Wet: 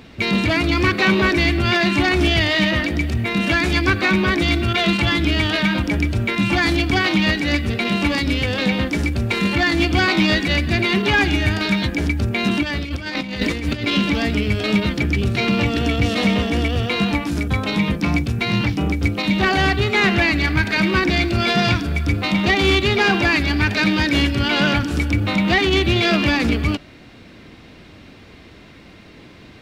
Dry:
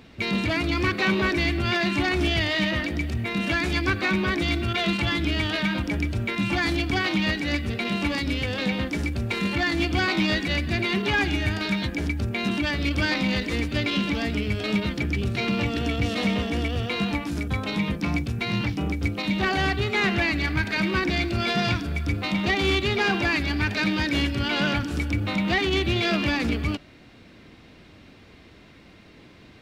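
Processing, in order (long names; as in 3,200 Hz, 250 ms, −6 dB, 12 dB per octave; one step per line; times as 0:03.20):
0:12.63–0:13.87: compressor whose output falls as the input rises −29 dBFS, ratio −0.5
level +6.5 dB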